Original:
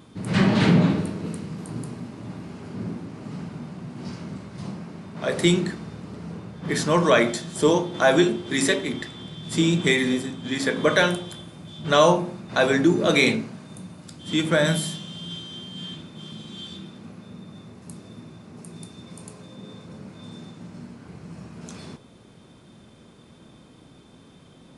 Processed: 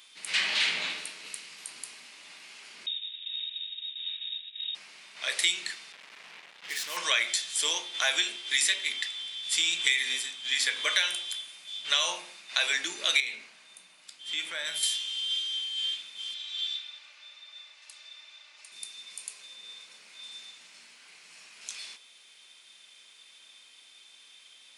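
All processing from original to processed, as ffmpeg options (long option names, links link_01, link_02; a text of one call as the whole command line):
ffmpeg -i in.wav -filter_complex "[0:a]asettb=1/sr,asplit=3[link_01][link_02][link_03];[link_01]atrim=end=2.864[link_04];[link_02]atrim=start=2.86:end=4.75,asetpts=PTS-STARTPTS,afade=type=in:duration=0.004:curve=qsin,afade=type=out:start_time=1.886:duration=0.004:curve=qsin,agate=range=-33dB:threshold=-31dB:ratio=3:release=100:detection=peak,lowpass=frequency=3300:width_type=q:width=0.5098,lowpass=frequency=3300:width_type=q:width=0.6013,lowpass=frequency=3300:width_type=q:width=0.9,lowpass=frequency=3300:width_type=q:width=2.563,afreqshift=-3900,acompressor=threshold=-43dB:ratio=2:attack=3.2:release=140:knee=1:detection=peak[link_05];[link_03]atrim=start=4.746[link_06];[link_04][link_05]acrossfade=duration=0.004:curve1=hsin:curve2=qsin[link_07];[link_07][link_06]acrossfade=duration=0.004:curve1=qsin:curve2=hsin,asettb=1/sr,asplit=3[link_08][link_09][link_10];[link_08]atrim=end=5.924[link_11];[link_09]atrim=start=5.92:end=6.97,asetpts=PTS-STARTPTS,afade=type=in:duration=0.004:curve=qsin,afade=type=out:start_time=1.046:duration=0.004:curve=qsin,highshelf=frequency=2500:gain=-12,acompressor=threshold=-30dB:ratio=1.5:attack=3.2:release=140:knee=1:detection=peak,acrusher=bits=5:mix=0:aa=0.5[link_12];[link_10]atrim=start=6.966[link_13];[link_11][link_12]acrossfade=duration=0.004:curve1=hsin:curve2=qsin[link_14];[link_14][link_13]acrossfade=duration=0.004:curve1=qsin:curve2=hsin,asettb=1/sr,asplit=3[link_15][link_16][link_17];[link_15]atrim=end=13.204[link_18];[link_16]atrim=start=13.2:end=14.83,asetpts=PTS-STARTPTS,afade=type=in:duration=0.004:curve=qsin,afade=type=out:start_time=1.626:duration=0.004:curve=qsin,highshelf=frequency=2300:gain=-9.5,acompressor=threshold=-23dB:ratio=3:attack=3.2:release=140:knee=1:detection=peak[link_19];[link_17]atrim=start=14.826[link_20];[link_18][link_19]acrossfade=duration=0.004:curve1=hsin:curve2=qsin[link_21];[link_21][link_20]acrossfade=duration=0.004:curve1=qsin:curve2=hsin,asettb=1/sr,asplit=3[link_22][link_23][link_24];[link_22]atrim=end=16.344[link_25];[link_23]atrim=start=16.34:end=18.72,asetpts=PTS-STARTPTS,afade=type=in:duration=0.004:curve=qsin,afade=type=out:start_time=2.376:duration=0.004:curve=qsin,highpass=590,lowpass=5200,aecho=1:1:3.4:0.57,atrim=end_sample=104958[link_26];[link_24]atrim=start=18.716[link_27];[link_25][link_26]acrossfade=duration=0.004:curve1=hsin:curve2=qsin[link_28];[link_28][link_27]acrossfade=duration=0.004:curve1=qsin:curve2=hsin,highpass=1400,highshelf=frequency=1800:width_type=q:width=1.5:gain=8,acompressor=threshold=-20dB:ratio=4,volume=-2.5dB" out.wav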